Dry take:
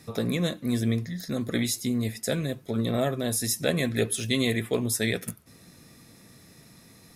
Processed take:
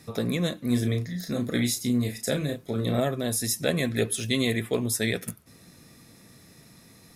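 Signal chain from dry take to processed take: 0.67–3.00 s: doubling 33 ms -6.5 dB

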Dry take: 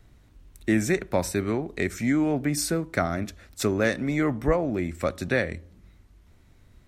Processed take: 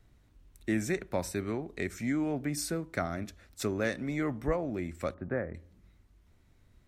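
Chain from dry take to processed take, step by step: 5.14–5.55 s: low-pass 1.5 kHz 24 dB/octave; trim -7.5 dB

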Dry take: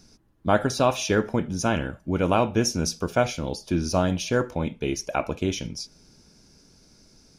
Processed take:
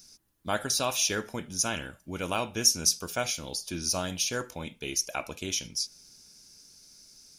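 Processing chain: pre-emphasis filter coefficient 0.9; trim +7.5 dB

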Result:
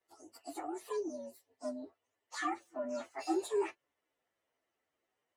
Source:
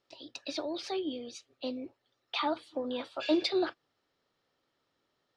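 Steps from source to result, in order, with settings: frequency axis rescaled in octaves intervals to 125%; tone controls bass -10 dB, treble -9 dB

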